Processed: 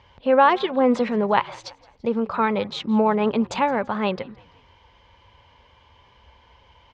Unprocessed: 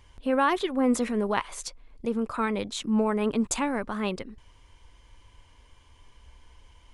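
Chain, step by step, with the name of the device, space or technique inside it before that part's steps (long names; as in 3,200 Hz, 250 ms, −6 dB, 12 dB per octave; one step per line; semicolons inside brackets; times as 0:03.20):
frequency-shifting delay pedal into a guitar cabinet (echo with shifted repeats 168 ms, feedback 50%, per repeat −42 Hz, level −23.5 dB; loudspeaker in its box 84–4,500 Hz, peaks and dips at 300 Hz −7 dB, 550 Hz +5 dB, 860 Hz +6 dB)
level +5 dB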